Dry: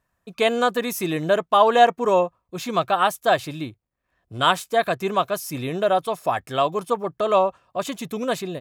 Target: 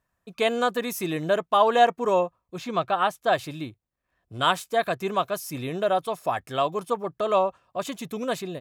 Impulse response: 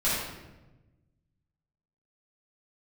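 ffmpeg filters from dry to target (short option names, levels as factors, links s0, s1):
-filter_complex "[0:a]asettb=1/sr,asplit=3[s0][s1][s2];[s0]atrim=end=2.584[s3];[s1]atrim=start=2.58:end=3.33,asetpts=PTS-STARTPTS,afade=t=in:d=0.004:c=qsin,afade=t=out:st=0.746:d=0.004:c=qsin,highshelf=f=6900:g=-12[s4];[s2]atrim=start=3.326[s5];[s3][s4]acrossfade=d=0.004:c1=hsin:c2=qsin[s6];[s6][s5]acrossfade=d=0.004:c1=qsin:c2=hsin,volume=0.668"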